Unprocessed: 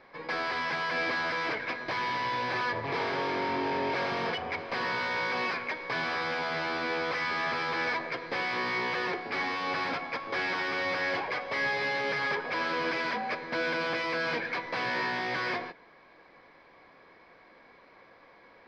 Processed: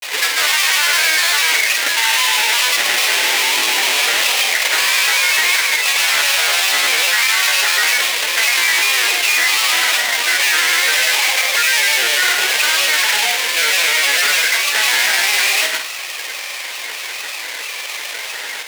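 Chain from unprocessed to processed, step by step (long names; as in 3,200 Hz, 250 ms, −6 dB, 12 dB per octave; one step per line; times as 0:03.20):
each half-wave held at its own peak
high-pass filter 810 Hz 12 dB per octave
high shelf with overshoot 1,700 Hz +9.5 dB, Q 1.5
granular cloud, pitch spread up and down by 3 semitones
on a send: flutter between parallel walls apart 8.6 metres, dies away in 0.26 s
on the sum: boost into a limiter +13.5 dB
envelope flattener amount 50%
level −3 dB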